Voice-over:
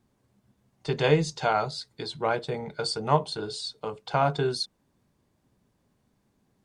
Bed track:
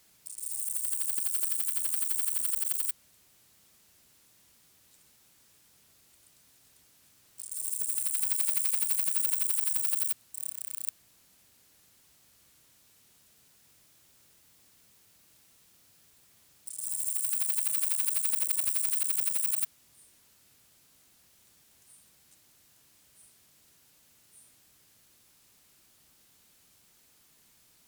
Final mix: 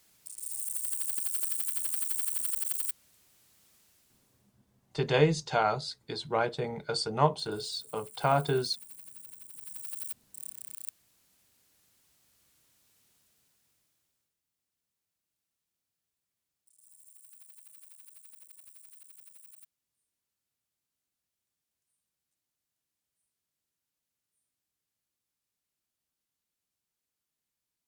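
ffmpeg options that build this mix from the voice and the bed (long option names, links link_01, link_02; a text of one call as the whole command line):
ffmpeg -i stem1.wav -i stem2.wav -filter_complex "[0:a]adelay=4100,volume=-2dB[link_01];[1:a]volume=12.5dB,afade=type=out:start_time=3.79:duration=0.79:silence=0.11885,afade=type=in:start_time=9.52:duration=0.84:silence=0.188365,afade=type=out:start_time=13.03:duration=1.31:silence=0.112202[link_02];[link_01][link_02]amix=inputs=2:normalize=0" out.wav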